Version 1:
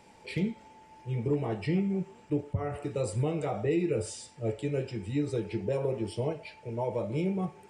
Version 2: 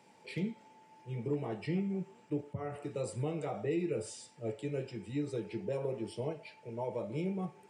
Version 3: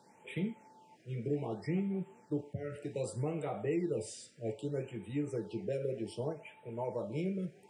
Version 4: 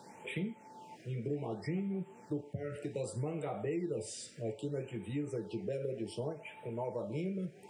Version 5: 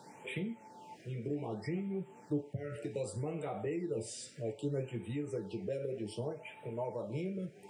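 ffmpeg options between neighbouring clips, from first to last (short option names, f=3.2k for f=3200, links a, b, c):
-af "highpass=f=120:w=0.5412,highpass=f=120:w=1.3066,volume=-5.5dB"
-af "afftfilt=real='re*(1-between(b*sr/1024,900*pow(5600/900,0.5+0.5*sin(2*PI*0.64*pts/sr))/1.41,900*pow(5600/900,0.5+0.5*sin(2*PI*0.64*pts/sr))*1.41))':imag='im*(1-between(b*sr/1024,900*pow(5600/900,0.5+0.5*sin(2*PI*0.64*pts/sr))/1.41,900*pow(5600/900,0.5+0.5*sin(2*PI*0.64*pts/sr))*1.41))':win_size=1024:overlap=0.75"
-af "acompressor=threshold=-51dB:ratio=2,volume=8.5dB"
-af "flanger=delay=6.4:depth=4.9:regen=64:speed=0.44:shape=triangular,volume=4dB"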